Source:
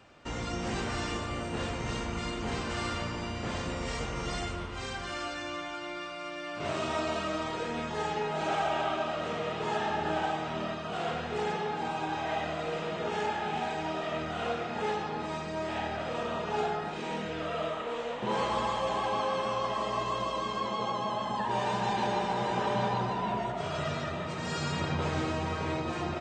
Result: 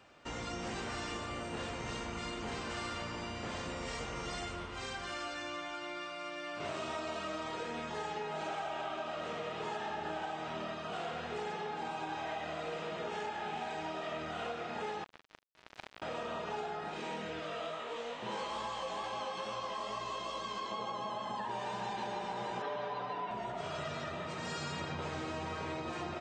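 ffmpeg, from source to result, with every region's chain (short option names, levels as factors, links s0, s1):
-filter_complex "[0:a]asettb=1/sr,asplit=3[s0][s1][s2];[s0]atrim=end=15.044[s3];[s1]atrim=start=15.04:end=16.02,asetpts=PTS-STARTPTS,afade=t=in:d=0.004:c=qsin,afade=t=out:st=0.976:d=0.004:c=qsin,lowpass=2600,acrusher=bits=3:mix=0:aa=0.5[s4];[s2]atrim=start=16.016[s5];[s3][s4]acrossfade=d=0.004:c1=hsin:c2=qsin[s6];[s6][s5]acrossfade=d=0.004:c1=qsin:c2=hsin,asettb=1/sr,asplit=3[s7][s8][s9];[s7]atrim=end=17.404[s10];[s8]atrim=start=17.4:end=20.72,asetpts=PTS-STARTPTS,afade=t=in:d=0.004:c=qsin,afade=t=out:st=3.316:d=0.004:c=qsin,equalizer=f=5400:w=0.54:g=5,flanger=delay=17.5:depth=4.2:speed=2.3[s11];[s9]atrim=start=20.716[s12];[s10][s11]acrossfade=d=0.004:c1=hsin:c2=qsin[s13];[s13][s12]acrossfade=d=0.004:c1=qsin:c2=hsin,asettb=1/sr,asplit=3[s14][s15][s16];[s14]atrim=end=22.624[s17];[s15]atrim=start=22.62:end=23.31,asetpts=PTS-STARTPTS,afade=t=in:d=0.004:c=qsin,afade=t=out:st=0.686:d=0.004:c=qsin,highpass=220,lowpass=3900,aecho=1:1:6.9:0.79,atrim=end_sample=30429[s18];[s16]atrim=start=23.306[s19];[s17][s18]acrossfade=d=0.004:c1=hsin:c2=qsin[s20];[s20][s19]acrossfade=d=0.004:c1=qsin:c2=hsin,lowshelf=f=240:g=-6,acompressor=threshold=0.0224:ratio=6,volume=0.75"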